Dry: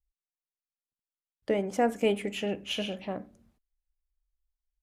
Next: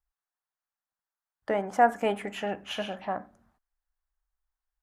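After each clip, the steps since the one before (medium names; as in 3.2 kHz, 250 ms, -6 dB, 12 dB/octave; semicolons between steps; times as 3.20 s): high-order bell 1.1 kHz +13 dB; trim -3.5 dB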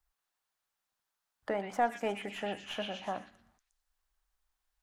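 tracing distortion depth 0.031 ms; repeats whose band climbs or falls 119 ms, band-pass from 3.1 kHz, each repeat 0.7 oct, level -0.5 dB; three bands compressed up and down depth 40%; trim -6 dB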